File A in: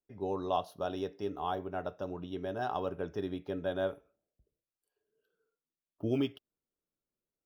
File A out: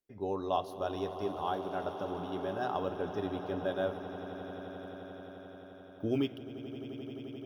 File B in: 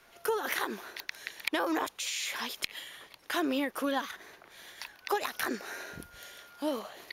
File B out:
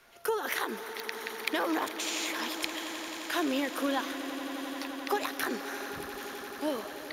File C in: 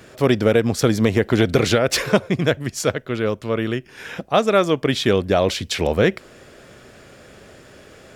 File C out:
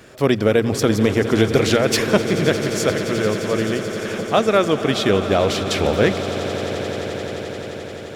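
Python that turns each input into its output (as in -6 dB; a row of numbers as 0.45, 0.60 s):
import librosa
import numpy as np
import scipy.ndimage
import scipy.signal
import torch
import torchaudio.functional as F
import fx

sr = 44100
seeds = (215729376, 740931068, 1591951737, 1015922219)

y = fx.hum_notches(x, sr, base_hz=60, count=3)
y = fx.echo_swell(y, sr, ms=87, loudest=8, wet_db=-16)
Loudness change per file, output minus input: -0.5, +0.5, +0.5 LU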